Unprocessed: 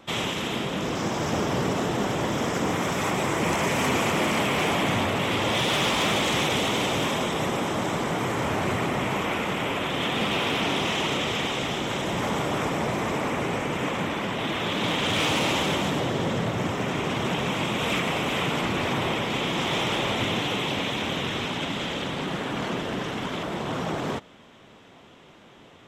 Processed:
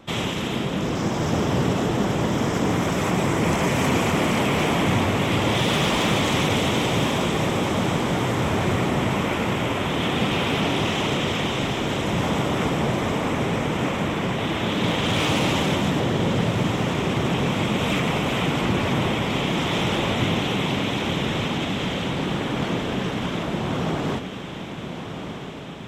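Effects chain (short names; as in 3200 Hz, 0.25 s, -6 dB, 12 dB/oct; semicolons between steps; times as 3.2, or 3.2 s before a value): low shelf 300 Hz +7.5 dB; on a send: diffused feedback echo 1.324 s, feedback 61%, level -9 dB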